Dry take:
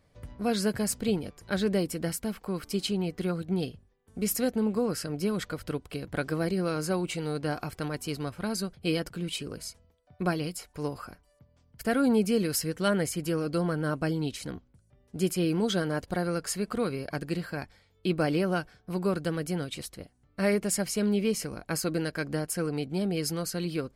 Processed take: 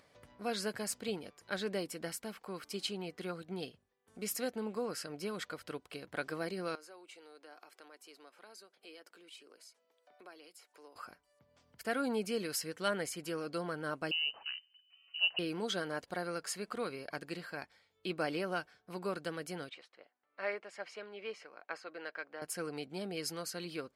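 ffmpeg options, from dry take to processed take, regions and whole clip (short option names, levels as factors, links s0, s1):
-filter_complex "[0:a]asettb=1/sr,asplit=3[s0][s1][s2];[s0]atrim=end=6.754[s3];[s1]atrim=start=6.75:end=10.96,asetpts=PTS-STARTPTS,afade=t=in:d=0.004:c=qsin,afade=t=out:st=4.206:d=0.004:c=qsin,highpass=f=300:w=0.5412,highpass=f=300:w=1.3066,acompressor=threshold=0.00158:ratio=2:attack=3.2:release=140:knee=1:detection=peak[s4];[s2]atrim=start=10.956[s5];[s3][s4]acrossfade=d=0.004:c1=hsin:c2=qsin[s6];[s6][s5]acrossfade=d=0.004:c1=qsin:c2=hsin,asettb=1/sr,asplit=3[s7][s8][s9];[s7]atrim=end=14.114[s10];[s8]atrim=start=14.11:end=15.39,asetpts=PTS-STARTPTS,afade=t=in:d=0.004:c=qsin,afade=t=out:st=1.276:d=0.004:c=qsin,highpass=48,lowpass=f=2600:t=q:w=0.5098,lowpass=f=2600:t=q:w=0.6013,lowpass=f=2600:t=q:w=0.9,lowpass=f=2600:t=q:w=2.563,afreqshift=-3100[s11];[s9]atrim=start=15.386[s12];[s10][s11]acrossfade=d=0.004:c1=hsin:c2=qsin[s13];[s13][s12]acrossfade=d=0.004:c1=qsin:c2=hsin,asettb=1/sr,asplit=3[s14][s15][s16];[s14]atrim=end=19.694[s17];[s15]atrim=start=19.69:end=22.42,asetpts=PTS-STARTPTS,afade=t=in:d=0.004:c=qsin,afade=t=out:st=2.726:d=0.004:c=qsin,tremolo=f=2.5:d=0.39,highpass=520,lowpass=2600[s18];[s16]atrim=start=22.416[s19];[s17][s18]acrossfade=d=0.004:c1=hsin:c2=qsin[s20];[s20][s19]acrossfade=d=0.004:c1=qsin:c2=hsin,highpass=f=670:p=1,acompressor=mode=upward:threshold=0.00224:ratio=2.5,highshelf=f=8200:g=-7.5,volume=0.668"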